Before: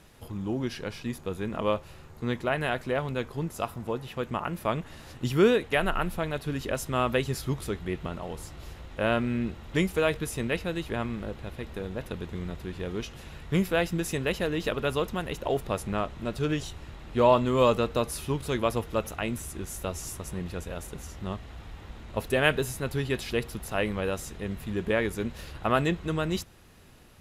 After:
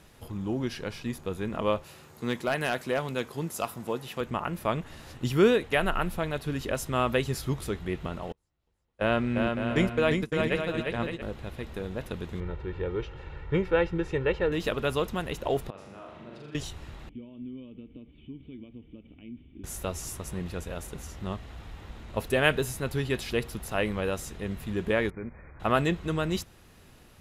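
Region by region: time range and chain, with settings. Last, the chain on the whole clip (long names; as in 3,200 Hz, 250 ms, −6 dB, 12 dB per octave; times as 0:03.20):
0:01.84–0:04.21: high-pass filter 140 Hz + high-shelf EQ 4,100 Hz +7.5 dB + hard clipping −19 dBFS
0:08.32–0:11.22: noise gate −31 dBFS, range −37 dB + high-shelf EQ 10,000 Hz −11.5 dB + bouncing-ball delay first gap 350 ms, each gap 0.6×, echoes 5
0:12.40–0:14.52: low-pass filter 2,200 Hz + comb filter 2.2 ms, depth 70%
0:15.70–0:16.55: output level in coarse steps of 23 dB + band-pass filter 150–3,700 Hz + flutter between parallel walls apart 7.1 metres, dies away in 1 s
0:17.09–0:19.64: downward compressor 4 to 1, threshold −31 dBFS + formant resonators in series i
0:25.10–0:25.60: linear-phase brick-wall low-pass 2,500 Hz + output level in coarse steps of 12 dB
whole clip: no processing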